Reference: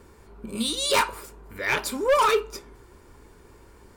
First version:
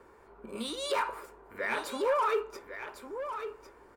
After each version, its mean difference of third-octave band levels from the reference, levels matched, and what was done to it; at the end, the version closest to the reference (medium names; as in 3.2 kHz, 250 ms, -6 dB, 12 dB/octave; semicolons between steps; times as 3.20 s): 6.5 dB: three-band isolator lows -15 dB, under 360 Hz, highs -14 dB, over 2.1 kHz; peak limiter -21.5 dBFS, peak gain reduction 9 dB; delay 1102 ms -9.5 dB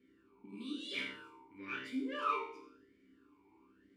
8.5 dB: chord resonator C2 fifth, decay 0.55 s; on a send: filtered feedback delay 83 ms, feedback 43%, low-pass 1.5 kHz, level -4 dB; on the sum: talking filter i-u 1 Hz; trim +10.5 dB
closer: first